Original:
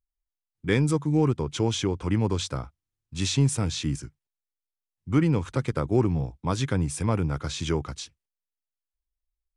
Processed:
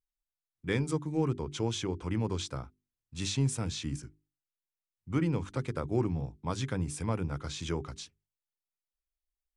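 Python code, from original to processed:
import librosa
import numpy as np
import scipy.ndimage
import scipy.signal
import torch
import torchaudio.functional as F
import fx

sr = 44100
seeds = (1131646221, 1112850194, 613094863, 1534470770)

y = fx.hum_notches(x, sr, base_hz=50, count=8)
y = fx.wow_flutter(y, sr, seeds[0], rate_hz=2.1, depth_cents=29.0)
y = y * 10.0 ** (-6.5 / 20.0)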